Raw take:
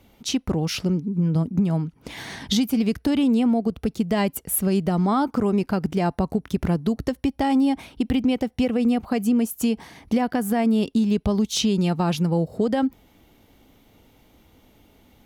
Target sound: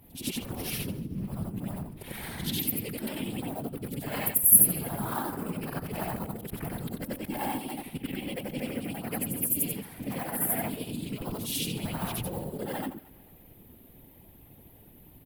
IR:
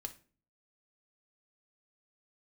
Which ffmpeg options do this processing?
-filter_complex "[0:a]afftfilt=real='re':imag='-im':win_size=8192:overlap=0.75,bandreject=f=1.3k:w=19,acrossover=split=860|980[a][b][c];[a]acompressor=threshold=-38dB:ratio=16[d];[b]acrusher=bits=2:mode=log:mix=0:aa=0.000001[e];[c]aeval=exprs='val(0)*sin(2*PI*220*n/s)':c=same[f];[d][e][f]amix=inputs=3:normalize=0,highshelf=f=3.6k:g=2,bandreject=f=106.2:t=h:w=4,bandreject=f=212.4:t=h:w=4,bandreject=f=318.6:t=h:w=4,bandreject=f=424.8:t=h:w=4,bandreject=f=531:t=h:w=4,bandreject=f=637.2:t=h:w=4,bandreject=f=743.4:t=h:w=4,bandreject=f=849.6:t=h:w=4,bandreject=f=955.8:t=h:w=4,bandreject=f=1.062k:t=h:w=4,bandreject=f=1.1682k:t=h:w=4,bandreject=f=1.2744k:t=h:w=4,bandreject=f=1.3806k:t=h:w=4,bandreject=f=1.4868k:t=h:w=4,bandreject=f=1.593k:t=h:w=4,aexciter=amount=14.9:drive=3.4:freq=8.9k,afftfilt=real='hypot(re,im)*cos(2*PI*random(0))':imag='hypot(re,im)*sin(2*PI*random(1))':win_size=512:overlap=0.75,bass=f=250:g=4,treble=f=4k:g=-10,aecho=1:1:223|446|669:0.0708|0.0304|0.0131,volume=9dB"

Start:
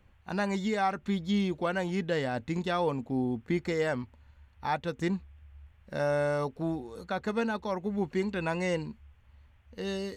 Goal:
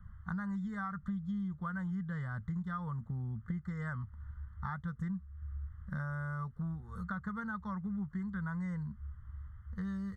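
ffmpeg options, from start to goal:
-af "firequalizer=gain_entry='entry(190,0);entry(270,-27);entry(740,-24);entry(1200,-1);entry(1900,-13);entry(4000,-28);entry(8100,-21)':delay=0.05:min_phase=1,acompressor=threshold=-48dB:ratio=6,asuperstop=centerf=2500:order=20:qfactor=2.8,volume=11.5dB"

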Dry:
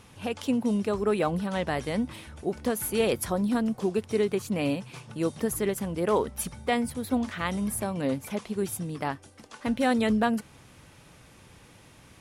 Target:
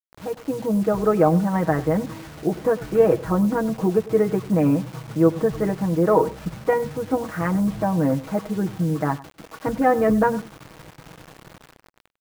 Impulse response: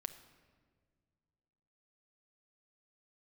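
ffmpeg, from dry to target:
-filter_complex "[0:a]lowpass=f=1.7k:w=0.5412,lowpass=f=1.7k:w=1.3066,aemphasis=mode=reproduction:type=75kf,aecho=1:1:6.3:0.91,dynaudnorm=f=120:g=11:m=6.5dB,acrusher=bits=6:mix=0:aa=0.000001,asplit=2[a][b];[b]adelay=99.13,volume=-18dB,highshelf=f=4k:g=-2.23[c];[a][c]amix=inputs=2:normalize=0"

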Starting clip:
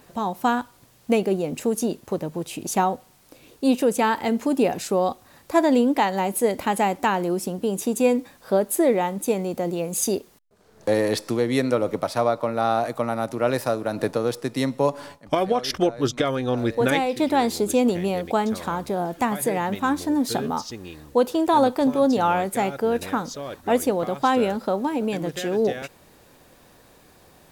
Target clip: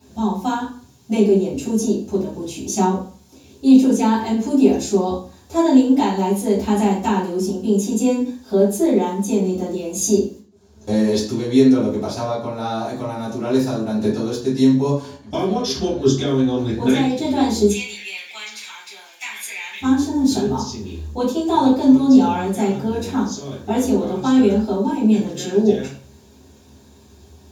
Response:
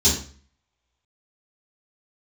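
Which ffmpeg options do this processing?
-filter_complex "[0:a]asettb=1/sr,asplit=3[a][b][c];[a]atrim=end=17.684[d];[b]atrim=start=17.68:end=19.81,asetpts=PTS-STARTPTS,afade=t=in:d=0.004:c=qsin,afade=t=out:st=2.126:d=0.004:c=qsin,highpass=f=2.3k:t=q:w=5.9[e];[c]atrim=start=19.806[f];[d][e]acrossfade=d=0.004:c1=hsin:c2=qsin[g];[g][f]acrossfade=d=0.004:c1=qsin:c2=hsin[h];[1:a]atrim=start_sample=2205[i];[h][i]afir=irnorm=-1:irlink=0,volume=-16dB"

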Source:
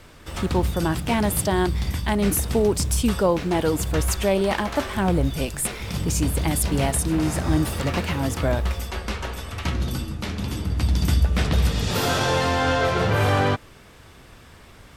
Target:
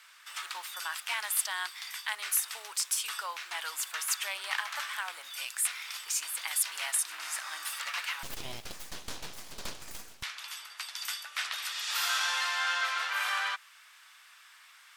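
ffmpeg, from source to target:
-filter_complex "[0:a]highpass=f=1.2k:w=0.5412,highpass=f=1.2k:w=1.3066,asettb=1/sr,asplit=3[a][b][c];[a]atrim=end=8.234[d];[b]atrim=start=8.23:end=10.23,asetpts=PTS-STARTPTS,afade=t=in:d=0.004:c=qsin,afade=t=out:st=1.996:d=0.004:c=qsin,aeval=exprs='abs(val(0))':c=same[e];[c]atrim=start=10.226[f];[d][e]acrossfade=d=0.004:c1=hsin:c2=qsin[g];[g][f]acrossfade=d=0.004:c1=qsin:c2=hsin,volume=-3dB"

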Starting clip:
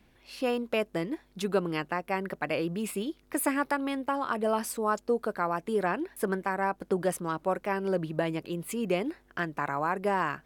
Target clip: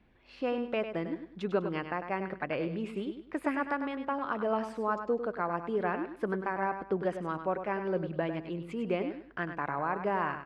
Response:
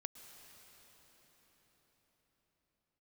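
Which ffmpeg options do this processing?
-af "lowpass=2.7k,aecho=1:1:100|200|300:0.355|0.0993|0.0278,volume=-3dB"

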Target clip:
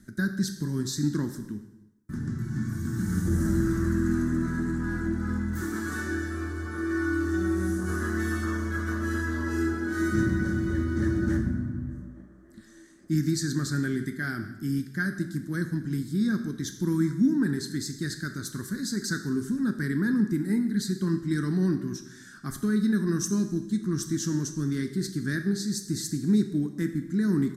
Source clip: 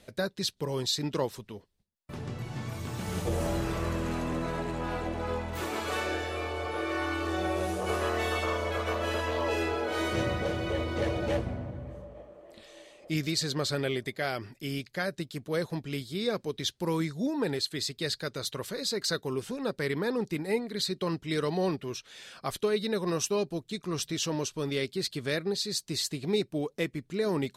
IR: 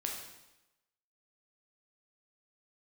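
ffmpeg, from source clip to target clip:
-filter_complex "[0:a]firequalizer=gain_entry='entry(140,0);entry(210,7);entry(340,-1);entry(480,-25);entry(760,-22);entry(1600,2);entry(2500,-27);entry(3700,-16);entry(6000,-4)':delay=0.05:min_phase=1,asplit=2[a][b];[1:a]atrim=start_sample=2205[c];[b][c]afir=irnorm=-1:irlink=0,volume=-1dB[d];[a][d]amix=inputs=2:normalize=0"

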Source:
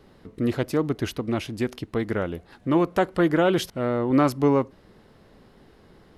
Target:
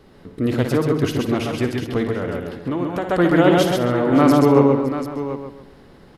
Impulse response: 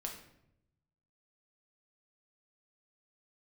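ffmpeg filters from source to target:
-filter_complex "[0:a]asplit=2[a][b];[b]aecho=0:1:57|130|198|564|739:0.355|0.596|0.119|0.126|0.299[c];[a][c]amix=inputs=2:normalize=0,asettb=1/sr,asplit=3[d][e][f];[d]atrim=end=2.044[g];[e]atrim=start=2.04:end=3.1,asetpts=PTS-STARTPTS,afade=t=in:d=0.004:c=qsin,afade=t=out:st=1.056:d=0.004:c=qsin,acompressor=threshold=-25dB:ratio=6[h];[f]atrim=start=3.096[i];[g][h]acrossfade=d=0.004:c1=hsin:c2=qsin[j];[j][i]acrossfade=d=0.004:c1=qsin:c2=hsin,asplit=2[k][l];[l]adelay=137,lowpass=f=2.5k:p=1,volume=-6dB,asplit=2[m][n];[n]adelay=137,lowpass=f=2.5k:p=1,volume=0.33,asplit=2[o][p];[p]adelay=137,lowpass=f=2.5k:p=1,volume=0.33,asplit=2[q][r];[r]adelay=137,lowpass=f=2.5k:p=1,volume=0.33[s];[m][o][q][s]amix=inputs=4:normalize=0[t];[k][t]amix=inputs=2:normalize=0,volume=3.5dB"

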